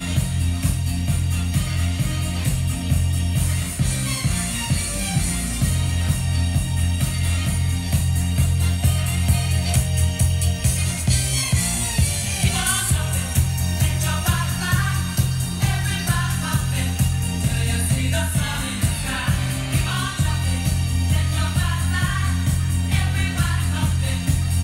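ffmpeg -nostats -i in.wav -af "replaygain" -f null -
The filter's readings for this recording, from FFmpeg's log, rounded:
track_gain = +6.2 dB
track_peak = 0.326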